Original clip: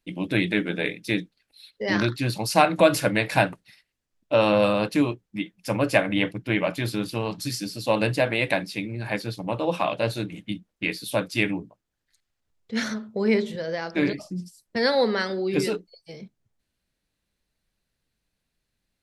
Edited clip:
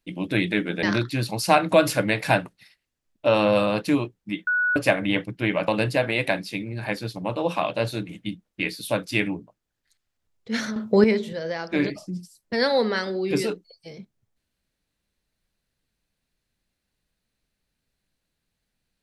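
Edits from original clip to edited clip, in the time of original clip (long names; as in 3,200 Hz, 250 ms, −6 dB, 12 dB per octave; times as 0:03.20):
0:00.83–0:01.90: remove
0:05.54–0:05.83: beep over 1,470 Hz −19 dBFS
0:06.75–0:07.91: remove
0:12.99–0:13.27: clip gain +9.5 dB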